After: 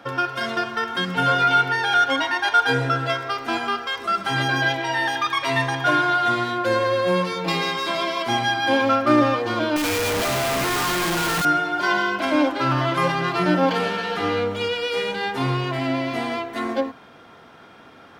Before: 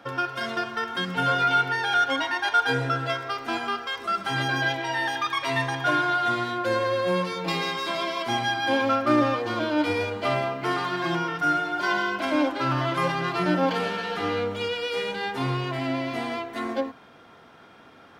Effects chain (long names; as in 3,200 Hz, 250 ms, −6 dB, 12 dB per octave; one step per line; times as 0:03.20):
0:09.76–0:11.45: sign of each sample alone
level +4 dB